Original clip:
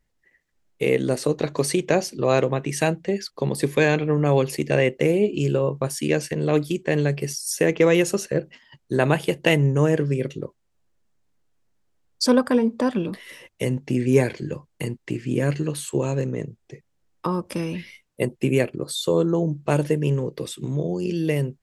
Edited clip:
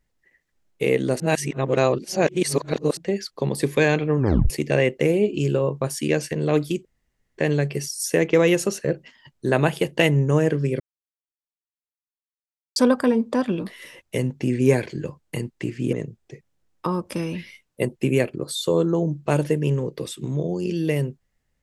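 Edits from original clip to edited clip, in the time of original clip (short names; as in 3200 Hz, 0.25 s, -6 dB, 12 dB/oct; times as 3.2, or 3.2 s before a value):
1.2–2.97 reverse
4.18 tape stop 0.32 s
6.85 insert room tone 0.53 s
10.27–12.23 mute
15.4–16.33 cut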